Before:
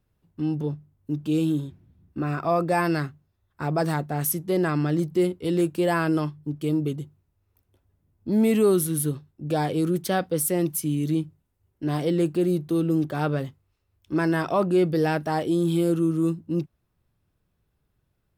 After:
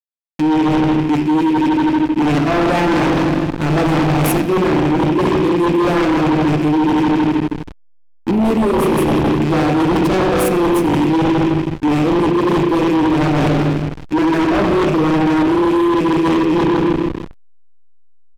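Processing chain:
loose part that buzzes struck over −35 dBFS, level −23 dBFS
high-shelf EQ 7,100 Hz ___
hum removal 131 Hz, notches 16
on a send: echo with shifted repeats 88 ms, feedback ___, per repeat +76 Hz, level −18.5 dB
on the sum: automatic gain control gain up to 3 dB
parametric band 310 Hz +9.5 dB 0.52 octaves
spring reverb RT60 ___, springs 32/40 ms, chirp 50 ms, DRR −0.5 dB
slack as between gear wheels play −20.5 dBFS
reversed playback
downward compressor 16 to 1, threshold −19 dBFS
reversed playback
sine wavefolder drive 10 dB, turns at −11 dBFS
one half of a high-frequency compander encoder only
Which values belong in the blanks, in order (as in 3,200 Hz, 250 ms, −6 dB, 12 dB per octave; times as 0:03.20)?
−5.5 dB, 56%, 2.2 s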